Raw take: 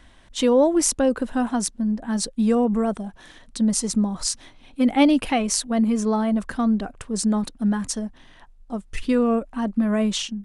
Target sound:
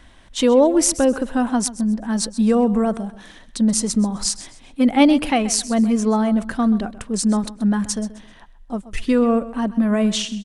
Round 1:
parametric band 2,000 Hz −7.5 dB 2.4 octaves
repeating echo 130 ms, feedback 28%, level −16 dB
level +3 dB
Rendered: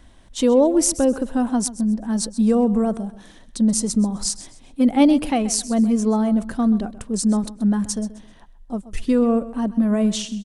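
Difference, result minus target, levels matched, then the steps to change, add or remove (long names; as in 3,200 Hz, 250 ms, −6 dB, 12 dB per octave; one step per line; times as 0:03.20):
2,000 Hz band −6.0 dB
remove: parametric band 2,000 Hz −7.5 dB 2.4 octaves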